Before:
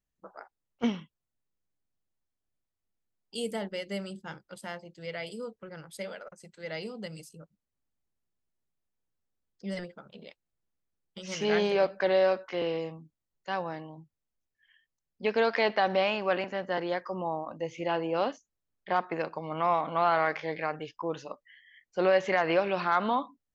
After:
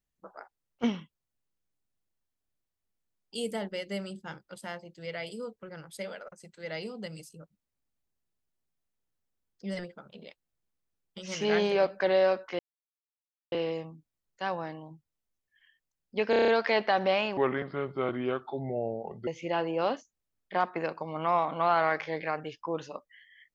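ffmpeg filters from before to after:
-filter_complex "[0:a]asplit=10[s0][s1][s2][s3][s4][s5][s6][s7][s8][s9];[s0]atrim=end=12.59,asetpts=PTS-STARTPTS,afade=t=out:st=12.586:d=0.004:c=hsin,apad=pad_dur=0.93[s10];[s1]atrim=start=12.59:end=15.402,asetpts=PTS-STARTPTS,afade=t=in:d=0.004:c=hsin[s11];[s2]atrim=start=15.368:end=15.402[s12];[s3]atrim=start=15.368:end=15.402[s13];[s4]atrim=start=15.368:end=15.402[s14];[s5]atrim=start=15.368:end=15.402[s15];[s6]atrim=start=15.368:end=15.402[s16];[s7]atrim=start=15.368:end=16.264[s17];[s8]atrim=start=16.26:end=17.63,asetpts=PTS-STARTPTS,asetrate=31752,aresample=44100,atrim=end_sample=83912,asetpts=PTS-STARTPTS[s18];[s9]atrim=start=17.626[s19];[s10][s11]concat=n=2:v=0:a=1[s20];[s20][s12]acrossfade=d=0.004:c1=hsin:c2=hsin[s21];[s21][s13]acrossfade=d=0.004:c1=hsin:c2=hsin[s22];[s22][s14]acrossfade=d=0.004:c1=hsin:c2=hsin[s23];[s23][s15]acrossfade=d=0.004:c1=hsin:c2=hsin[s24];[s24][s16]acrossfade=d=0.004:c1=hsin:c2=hsin[s25];[s25][s17]acrossfade=d=0.004:c1=hsin:c2=hsin[s26];[s26][s18]acrossfade=d=0.004:c1=hsin:c2=hsin[s27];[s27][s19]acrossfade=d=0.004:c1=hsin:c2=hsin"

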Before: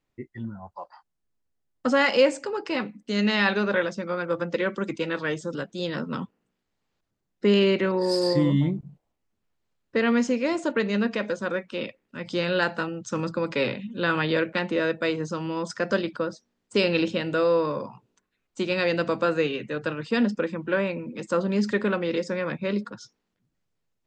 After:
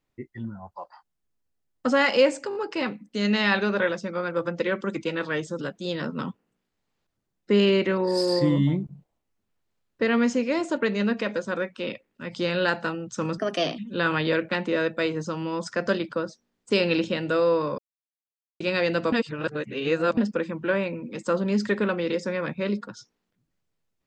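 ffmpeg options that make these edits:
-filter_complex "[0:a]asplit=10[s0][s1][s2][s3][s4][s5][s6][s7][s8][s9];[s0]atrim=end=2.512[s10];[s1]atrim=start=2.488:end=2.512[s11];[s2]atrim=start=2.488:end=2.512[s12];[s3]atrim=start=2.488:end=13.324[s13];[s4]atrim=start=13.32:end=13.82,asetpts=PTS-STARTPTS,asetrate=54684,aresample=44100,atrim=end_sample=17782,asetpts=PTS-STARTPTS[s14];[s5]atrim=start=13.816:end=17.82,asetpts=PTS-STARTPTS,afade=t=out:st=4:d=0.004:c=hsin[s15];[s6]atrim=start=17.82:end=18.64,asetpts=PTS-STARTPTS,volume=0[s16];[s7]atrim=start=18.64:end=19.162,asetpts=PTS-STARTPTS,afade=t=in:d=0.004:c=hsin[s17];[s8]atrim=start=19.158:end=20.212,asetpts=PTS-STARTPTS,areverse[s18];[s9]atrim=start=20.208[s19];[s10][s11]acrossfade=d=0.004:c1=hsin:c2=hsin[s20];[s20][s12]acrossfade=d=0.004:c1=hsin:c2=hsin[s21];[s21][s13]acrossfade=d=0.004:c1=hsin:c2=hsin[s22];[s22][s14]acrossfade=d=0.004:c1=hsin:c2=hsin[s23];[s15][s16][s17]concat=n=3:v=0:a=1[s24];[s23][s24]acrossfade=d=0.004:c1=hsin:c2=hsin[s25];[s25][s18]acrossfade=d=0.004:c1=hsin:c2=hsin[s26];[s26][s19]acrossfade=d=0.004:c1=hsin:c2=hsin"

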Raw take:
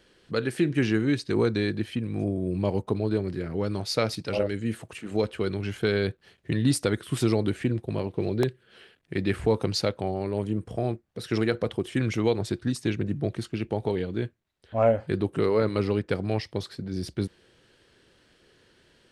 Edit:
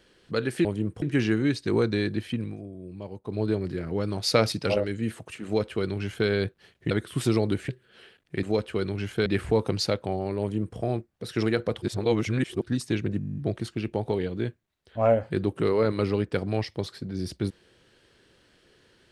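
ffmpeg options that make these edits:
-filter_complex "[0:a]asplit=22[s0][s1][s2][s3][s4][s5][s6][s7][s8][s9][s10][s11][s12][s13][s14][s15][s16][s17][s18][s19][s20][s21];[s0]atrim=end=0.652[s22];[s1]atrim=start=10.358:end=10.732[s23];[s2]atrim=start=0.648:end=2.2,asetpts=PTS-STARTPTS,afade=t=out:st=1.422:d=0.13:silence=0.237137[s24];[s3]atrim=start=2.2:end=2.89,asetpts=PTS-STARTPTS,volume=0.237[s25];[s4]atrim=start=2.89:end=3.862,asetpts=PTS-STARTPTS,afade=t=in:d=0.13:silence=0.237137[s26];[s5]atrim=start=3.858:end=4.372,asetpts=PTS-STARTPTS,volume=1.58[s27];[s6]atrim=start=4.368:end=6.542[s28];[s7]atrim=start=6.868:end=7.652[s29];[s8]atrim=start=8.468:end=9.212[s30];[s9]atrim=start=5.078:end=5.912[s31];[s10]atrim=start=9.208:end=11.772[s32];[s11]atrim=start=11.768:end=12.572,asetpts=PTS-STARTPTS,areverse[s33];[s12]atrim=start=12.568:end=13.162[s34];[s13]atrim=start=13.138:end=13.162[s35];[s14]atrim=start=13.138:end=13.162[s36];[s15]atrim=start=13.138:end=13.162[s37];[s16]atrim=start=13.138:end=13.162[s38];[s17]atrim=start=13.138:end=13.162[s39];[s18]atrim=start=13.138:end=13.162[s40];[s19]atrim=start=13.138:end=13.162[s41];[s20]atrim=start=13.138:end=13.162[s42];[s21]atrim=start=13.138[s43];[s22][s23]acrossfade=d=0.004:c1=hsin:c2=hsin[s44];[s24][s25][s26]concat=n=3:v=0:a=1[s45];[s44][s45]acrossfade=d=0.004:c1=hsin:c2=hsin[s46];[s46][s27]acrossfade=d=0.004:c1=hsin:c2=hsin[s47];[s47][s28]acrossfade=d=0.004:c1=hsin:c2=hsin[s48];[s48][s29]acrossfade=d=0.004:c1=hsin:c2=hsin[s49];[s49][s30]acrossfade=d=0.004:c1=hsin:c2=hsin[s50];[s50][s31]acrossfade=d=0.004:c1=hsin:c2=hsin[s51];[s51][s32]acrossfade=d=0.004:c1=hsin:c2=hsin[s52];[s52][s33]acrossfade=d=0.004:c1=hsin:c2=hsin[s53];[s53][s34]acrossfade=d=0.004:c1=hsin:c2=hsin[s54];[s54][s35]acrossfade=d=0.004:c1=hsin:c2=hsin[s55];[s55][s36]acrossfade=d=0.004:c1=hsin:c2=hsin[s56];[s56][s37]acrossfade=d=0.004:c1=hsin:c2=hsin[s57];[s57][s38]acrossfade=d=0.004:c1=hsin:c2=hsin[s58];[s58][s39]acrossfade=d=0.004:c1=hsin:c2=hsin[s59];[s59][s40]acrossfade=d=0.004:c1=hsin:c2=hsin[s60];[s60][s41]acrossfade=d=0.004:c1=hsin:c2=hsin[s61];[s61][s42]acrossfade=d=0.004:c1=hsin:c2=hsin[s62];[s62][s43]acrossfade=d=0.004:c1=hsin:c2=hsin"

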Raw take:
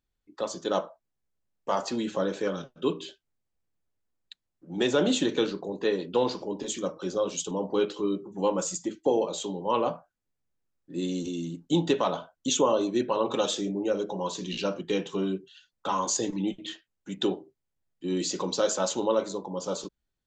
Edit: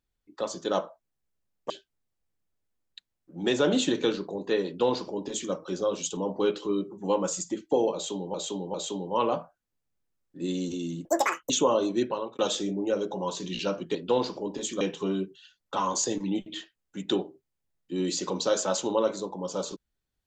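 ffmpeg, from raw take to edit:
-filter_complex "[0:a]asplit=9[s0][s1][s2][s3][s4][s5][s6][s7][s8];[s0]atrim=end=1.702[s9];[s1]atrim=start=3.038:end=9.682[s10];[s2]atrim=start=9.278:end=9.682[s11];[s3]atrim=start=9.278:end=11.594[s12];[s4]atrim=start=11.59:end=12.48,asetpts=PTS-STARTPTS,asetrate=87759,aresample=44100,atrim=end_sample=19723,asetpts=PTS-STARTPTS[s13];[s5]atrim=start=12.476:end=13.37,asetpts=PTS-STARTPTS,afade=t=out:st=0.524:d=0.37[s14];[s6]atrim=start=13.37:end=14.932,asetpts=PTS-STARTPTS,afade=t=in:d=0.004:c=hsin[s15];[s7]atrim=start=5.998:end=6.862[s16];[s8]atrim=start=14.928[s17];[s9][s10]acrossfade=d=0.004:c1=hsin:c2=hsin[s18];[s18][s11]acrossfade=d=0.004:c1=hsin:c2=hsin[s19];[s19][s12]acrossfade=d=0.004:c1=hsin:c2=hsin[s20];[s20][s13]acrossfade=d=0.004:c1=hsin:c2=hsin[s21];[s14][s15]concat=n=2:v=0:a=1[s22];[s21][s22]acrossfade=d=0.004:c1=hsin:c2=hsin[s23];[s23][s16]acrossfade=d=0.004:c1=hsin:c2=hsin[s24];[s24][s17]acrossfade=d=0.004:c1=hsin:c2=hsin"

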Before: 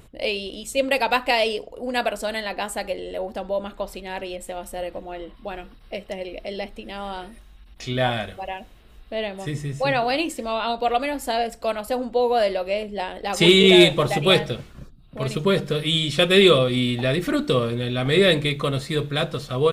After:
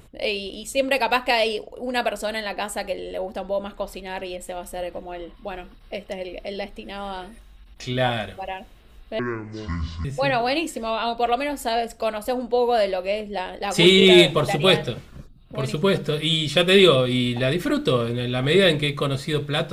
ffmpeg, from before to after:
-filter_complex "[0:a]asplit=3[s0][s1][s2];[s0]atrim=end=9.194[s3];[s1]atrim=start=9.19:end=9.67,asetpts=PTS-STARTPTS,asetrate=24696,aresample=44100[s4];[s2]atrim=start=9.666[s5];[s3][s4]acrossfade=d=0.004:c1=hsin:c2=hsin[s6];[s6][s5]acrossfade=d=0.004:c1=hsin:c2=hsin"

